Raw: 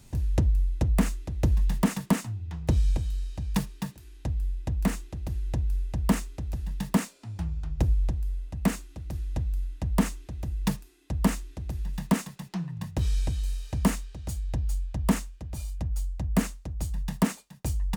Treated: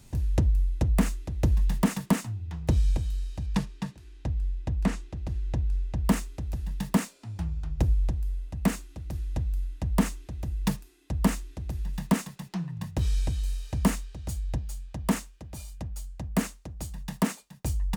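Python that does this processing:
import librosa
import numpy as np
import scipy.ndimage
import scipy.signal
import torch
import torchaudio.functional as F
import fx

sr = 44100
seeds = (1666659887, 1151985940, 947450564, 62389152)

y = fx.air_absorb(x, sr, metres=57.0, at=(3.46, 6.05))
y = fx.low_shelf(y, sr, hz=92.0, db=-10.5, at=(14.58, 17.42))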